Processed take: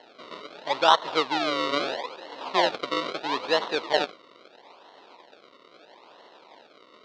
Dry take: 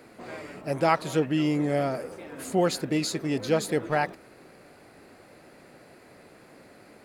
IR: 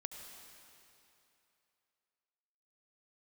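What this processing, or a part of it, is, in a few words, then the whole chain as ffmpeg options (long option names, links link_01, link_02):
circuit-bent sampling toy: -af "acrusher=samples=36:mix=1:aa=0.000001:lfo=1:lforange=36:lforate=0.76,highpass=550,equalizer=frequency=960:width_type=q:width=4:gain=7,equalizer=frequency=1600:width_type=q:width=4:gain=-4,equalizer=frequency=3900:width_type=q:width=4:gain=7,lowpass=frequency=4700:width=0.5412,lowpass=frequency=4700:width=1.3066,volume=3.5dB"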